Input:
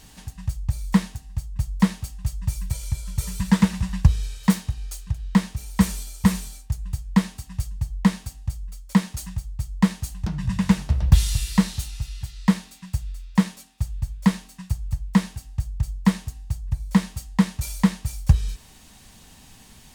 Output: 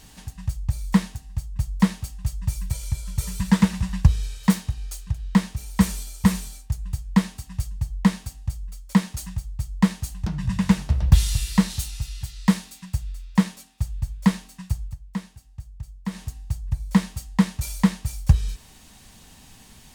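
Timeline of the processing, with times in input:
0:11.70–0:12.85: high-shelf EQ 4,400 Hz +5 dB
0:14.82–0:16.23: duck −11.5 dB, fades 0.13 s

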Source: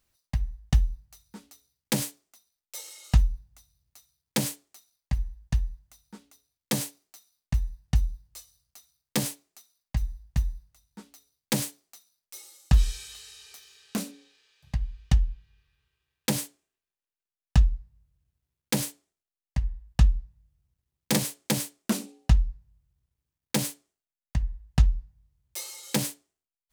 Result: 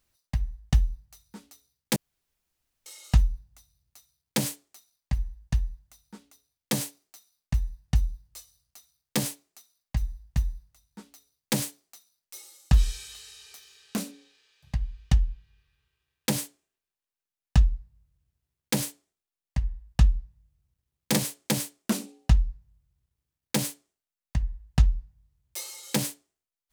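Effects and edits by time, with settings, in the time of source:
0:01.96–0:02.86: fill with room tone

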